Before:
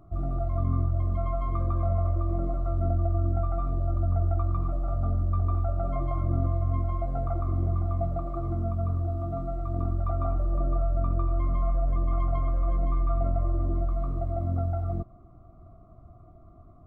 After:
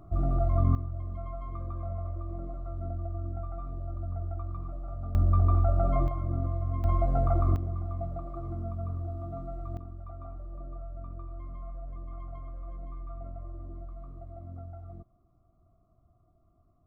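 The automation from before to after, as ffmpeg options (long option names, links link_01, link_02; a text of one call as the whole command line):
ffmpeg -i in.wav -af "asetnsamples=nb_out_samples=441:pad=0,asendcmd='0.75 volume volume -9.5dB;5.15 volume volume 3dB;6.08 volume volume -4.5dB;6.84 volume volume 3.5dB;7.56 volume volume -6.5dB;9.77 volume volume -15dB',volume=2.5dB" out.wav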